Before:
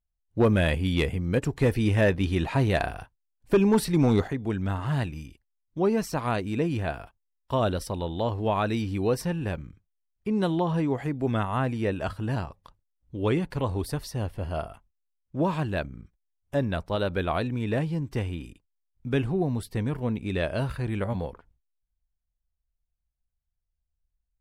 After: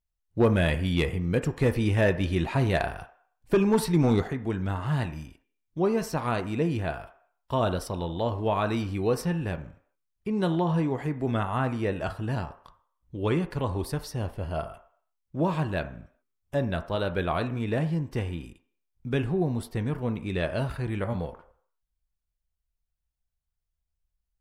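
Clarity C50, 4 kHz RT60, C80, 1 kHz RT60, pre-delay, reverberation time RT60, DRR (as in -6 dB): 13.5 dB, 0.60 s, 17.5 dB, 0.60 s, 3 ms, 0.60 s, 8.0 dB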